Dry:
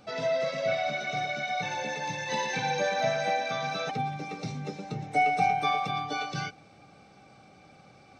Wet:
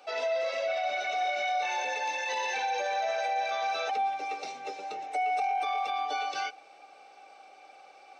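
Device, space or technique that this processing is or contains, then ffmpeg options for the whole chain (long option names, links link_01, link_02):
laptop speaker: -filter_complex "[0:a]asettb=1/sr,asplit=3[link_01][link_02][link_03];[link_01]atrim=end=1.204[link_04];[link_02]atrim=start=1.2:end=1.85,asetpts=PTS-STARTPTS,afade=type=in:duration=0.004:curve=qsin,afade=type=out:start_time=0.646:duration=0.004:curve=qsin,asplit=2[link_05][link_06];[link_06]adelay=22,volume=-2dB[link_07];[link_05][link_07]amix=inputs=2:normalize=0,atrim=end_sample=28665[link_08];[link_03]atrim=start=1.846[link_09];[link_04][link_08]acrossfade=duration=0.004:curve1=hsin:curve2=qsin[link_10];[link_10][link_09]acrossfade=duration=0.004:curve1=qsin:curve2=hsin,highpass=frequency=410:width=0.5412,highpass=frequency=410:width=1.3066,equalizer=frequency=780:width_type=o:width=0.34:gain=6.5,equalizer=frequency=2700:width_type=o:width=0.32:gain=6,alimiter=limit=-23dB:level=0:latency=1:release=34"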